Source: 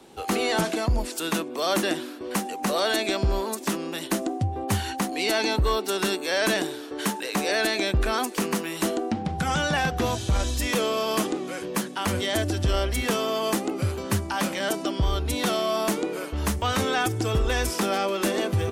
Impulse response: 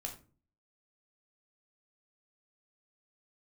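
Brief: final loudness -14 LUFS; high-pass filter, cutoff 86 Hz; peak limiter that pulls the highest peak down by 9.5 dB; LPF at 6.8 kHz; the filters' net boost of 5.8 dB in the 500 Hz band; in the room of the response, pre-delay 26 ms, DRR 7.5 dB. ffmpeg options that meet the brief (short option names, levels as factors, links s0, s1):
-filter_complex "[0:a]highpass=86,lowpass=6800,equalizer=f=500:t=o:g=7.5,alimiter=limit=0.112:level=0:latency=1,asplit=2[s0][s1];[1:a]atrim=start_sample=2205,adelay=26[s2];[s1][s2]afir=irnorm=-1:irlink=0,volume=0.501[s3];[s0][s3]amix=inputs=2:normalize=0,volume=4.73"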